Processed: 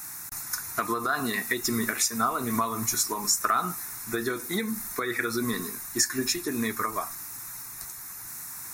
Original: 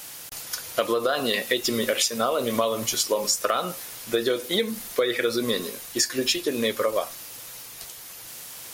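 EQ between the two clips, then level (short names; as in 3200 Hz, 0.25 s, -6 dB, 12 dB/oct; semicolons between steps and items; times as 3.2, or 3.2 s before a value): fixed phaser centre 1300 Hz, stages 4; notch 4700 Hz, Q 8.8; +2.5 dB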